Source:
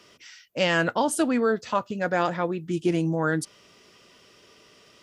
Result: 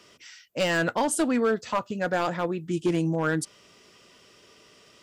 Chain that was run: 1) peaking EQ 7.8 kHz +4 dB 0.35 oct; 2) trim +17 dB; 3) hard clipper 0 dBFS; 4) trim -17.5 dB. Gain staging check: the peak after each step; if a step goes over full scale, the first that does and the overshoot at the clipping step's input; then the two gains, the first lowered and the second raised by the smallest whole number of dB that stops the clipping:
-9.0 dBFS, +8.0 dBFS, 0.0 dBFS, -17.5 dBFS; step 2, 8.0 dB; step 2 +9 dB, step 4 -9.5 dB

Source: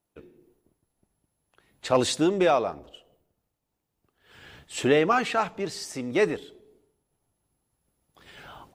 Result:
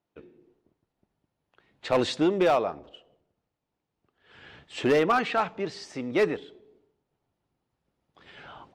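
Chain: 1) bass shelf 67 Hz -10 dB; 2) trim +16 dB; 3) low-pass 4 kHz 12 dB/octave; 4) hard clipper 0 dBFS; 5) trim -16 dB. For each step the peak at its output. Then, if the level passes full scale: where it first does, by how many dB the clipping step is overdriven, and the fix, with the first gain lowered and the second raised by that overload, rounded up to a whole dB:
-9.5 dBFS, +6.5 dBFS, +6.5 dBFS, 0.0 dBFS, -16.0 dBFS; step 2, 6.5 dB; step 2 +9 dB, step 5 -9 dB

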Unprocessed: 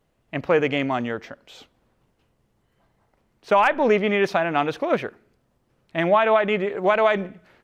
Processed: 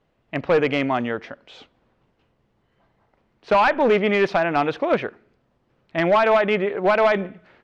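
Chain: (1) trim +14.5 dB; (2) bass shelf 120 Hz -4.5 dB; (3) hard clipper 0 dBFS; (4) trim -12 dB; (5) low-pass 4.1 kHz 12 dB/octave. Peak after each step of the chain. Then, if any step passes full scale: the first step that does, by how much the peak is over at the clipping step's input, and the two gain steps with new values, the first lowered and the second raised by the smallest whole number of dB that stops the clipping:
+7.0 dBFS, +7.0 dBFS, 0.0 dBFS, -12.0 dBFS, -11.5 dBFS; step 1, 7.0 dB; step 1 +7.5 dB, step 4 -5 dB

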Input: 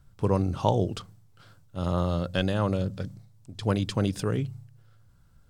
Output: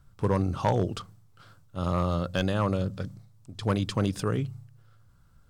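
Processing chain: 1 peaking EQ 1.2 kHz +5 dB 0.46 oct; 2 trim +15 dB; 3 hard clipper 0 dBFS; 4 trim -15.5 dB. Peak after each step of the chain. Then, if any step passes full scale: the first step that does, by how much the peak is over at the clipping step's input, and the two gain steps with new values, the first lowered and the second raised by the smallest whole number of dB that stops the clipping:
-6.0 dBFS, +9.0 dBFS, 0.0 dBFS, -15.5 dBFS; step 2, 9.0 dB; step 2 +6 dB, step 4 -6.5 dB

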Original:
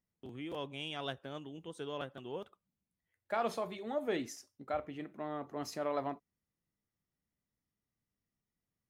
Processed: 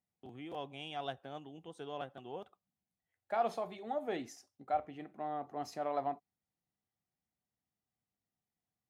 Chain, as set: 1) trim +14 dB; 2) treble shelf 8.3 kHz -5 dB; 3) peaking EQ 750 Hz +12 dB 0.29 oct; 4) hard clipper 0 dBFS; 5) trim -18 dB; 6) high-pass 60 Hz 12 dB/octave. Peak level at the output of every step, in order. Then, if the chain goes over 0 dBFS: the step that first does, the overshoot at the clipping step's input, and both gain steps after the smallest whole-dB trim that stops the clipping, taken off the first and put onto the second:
-9.5 dBFS, -9.5 dBFS, -3.0 dBFS, -3.0 dBFS, -21.0 dBFS, -21.0 dBFS; nothing clips

